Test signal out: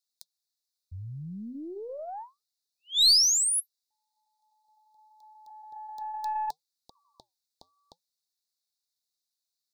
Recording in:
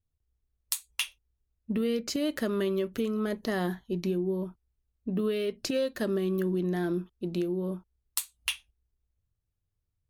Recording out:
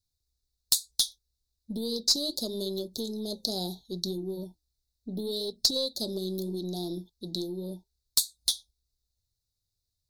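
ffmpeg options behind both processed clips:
-af "equalizer=f=4200:w=1.1:g=14.5,flanger=delay=0.4:depth=6.4:regen=-84:speed=0.73:shape=triangular,asuperstop=centerf=1800:order=20:qfactor=0.67,aeval=exprs='(tanh(7.94*val(0)+0.3)-tanh(0.3))/7.94':c=same,highshelf=f=3300:g=11"

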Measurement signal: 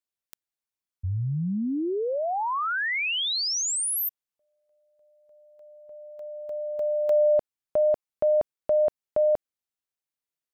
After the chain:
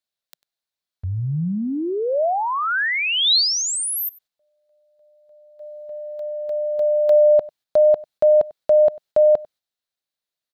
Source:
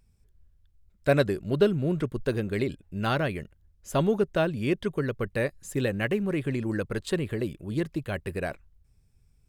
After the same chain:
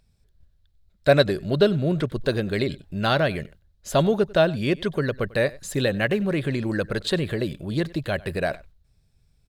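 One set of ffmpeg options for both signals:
-filter_complex "[0:a]agate=range=0.447:threshold=0.00224:ratio=16:release=258:detection=peak,equalizer=f=160:t=o:w=0.67:g=3,equalizer=f=630:t=o:w=0.67:g=7,equalizer=f=1600:t=o:w=0.67:g=4,equalizer=f=4000:t=o:w=0.67:g=11,asplit=2[s0][s1];[s1]acompressor=threshold=0.0141:ratio=6:attack=0.34:release=43:detection=peak,volume=1.12[s2];[s0][s2]amix=inputs=2:normalize=0,aecho=1:1:96:0.0794"

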